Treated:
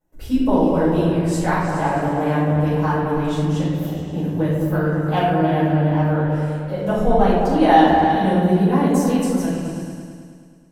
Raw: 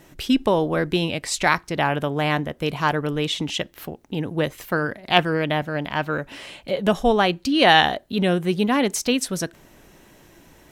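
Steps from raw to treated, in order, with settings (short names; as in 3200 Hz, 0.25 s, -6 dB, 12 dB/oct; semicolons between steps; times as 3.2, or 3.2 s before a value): gate with hold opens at -38 dBFS; bell 3200 Hz -13.5 dB 2.2 oct; on a send: repeats that get brighter 0.106 s, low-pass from 400 Hz, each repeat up 2 oct, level -3 dB; on the sum: shoebox room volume 230 m³, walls mixed, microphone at 5.4 m; gain -12 dB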